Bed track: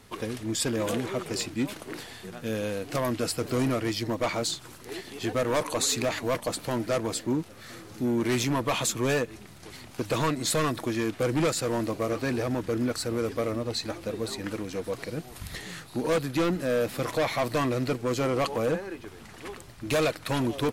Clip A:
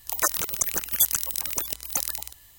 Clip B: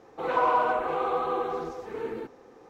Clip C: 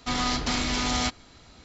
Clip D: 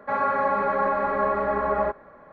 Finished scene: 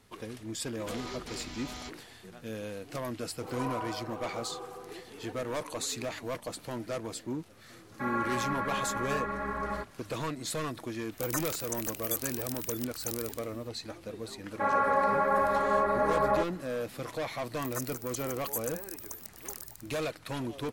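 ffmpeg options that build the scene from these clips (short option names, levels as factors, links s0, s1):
-filter_complex "[4:a]asplit=2[s0][s1];[1:a]asplit=2[s2][s3];[0:a]volume=0.376[s4];[s0]equalizer=f=630:t=o:w=1.5:g=-13.5[s5];[s2]alimiter=level_in=2.66:limit=0.891:release=50:level=0:latency=1[s6];[s3]asuperstop=centerf=3000:order=4:qfactor=1.2[s7];[3:a]atrim=end=1.64,asetpts=PTS-STARTPTS,volume=0.141,afade=t=in:d=0.004:c=hsin,afade=t=out:st=1.636:d=0.004:c=hsin,adelay=800[s8];[2:a]atrim=end=2.69,asetpts=PTS-STARTPTS,volume=0.2,afade=t=in:d=0.004:c=hsin,afade=t=out:st=2.686:d=0.004:c=hsin,adelay=3230[s9];[s5]atrim=end=2.32,asetpts=PTS-STARTPTS,volume=0.75,afade=t=in:d=0.004:c=hsin,afade=t=out:st=2.316:d=0.004:c=hsin,adelay=7920[s10];[s6]atrim=end=2.58,asetpts=PTS-STARTPTS,volume=0.133,afade=t=in:d=0.004:c=hsin,afade=t=out:st=2.576:d=0.004:c=hsin,adelay=11110[s11];[s1]atrim=end=2.32,asetpts=PTS-STARTPTS,volume=0.708,afade=t=in:d=0.004:c=hsin,afade=t=out:st=2.316:d=0.004:c=hsin,adelay=14520[s12];[s7]atrim=end=2.58,asetpts=PTS-STARTPTS,volume=0.188,afade=t=in:d=0.004:c=hsin,afade=t=out:st=2.576:d=0.004:c=hsin,adelay=17530[s13];[s4][s8][s9][s10][s11][s12][s13]amix=inputs=7:normalize=0"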